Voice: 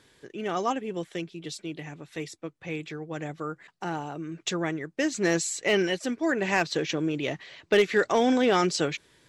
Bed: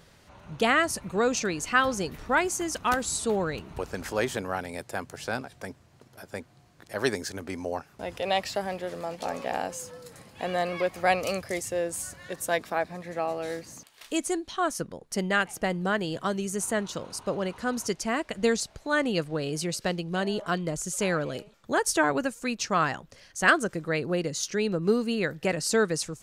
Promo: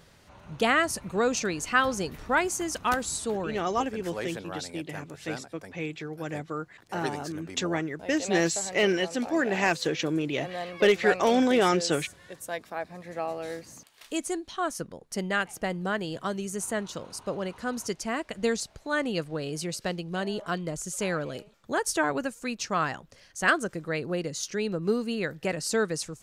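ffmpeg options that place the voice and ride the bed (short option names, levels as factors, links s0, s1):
-filter_complex "[0:a]adelay=3100,volume=1[s0];[1:a]volume=1.68,afade=t=out:st=2.89:d=0.82:silence=0.446684,afade=t=in:st=12.7:d=0.44:silence=0.562341[s1];[s0][s1]amix=inputs=2:normalize=0"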